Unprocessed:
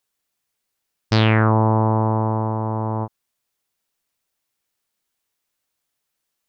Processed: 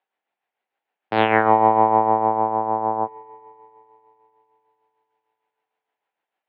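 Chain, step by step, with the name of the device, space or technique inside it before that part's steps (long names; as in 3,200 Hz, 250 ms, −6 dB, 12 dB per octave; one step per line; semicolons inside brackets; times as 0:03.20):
three-way crossover with the lows and the highs turned down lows −19 dB, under 310 Hz, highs −21 dB, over 2,800 Hz
combo amplifier with spring reverb and tremolo (spring reverb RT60 3.4 s, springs 43 ms, chirp 30 ms, DRR 12.5 dB; amplitude tremolo 6.6 Hz, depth 50%; loudspeaker in its box 94–3,700 Hz, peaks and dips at 190 Hz +3 dB, 790 Hz +9 dB, 1,200 Hz −5 dB)
level +5 dB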